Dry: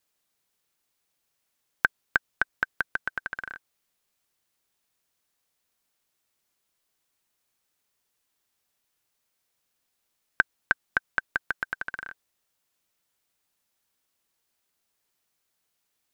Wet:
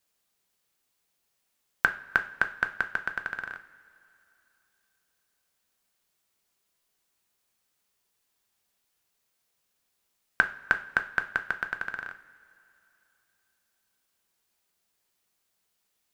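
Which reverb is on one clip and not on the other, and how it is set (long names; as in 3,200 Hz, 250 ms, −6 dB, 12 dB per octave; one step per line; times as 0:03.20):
coupled-rooms reverb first 0.38 s, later 3.1 s, from −20 dB, DRR 7.5 dB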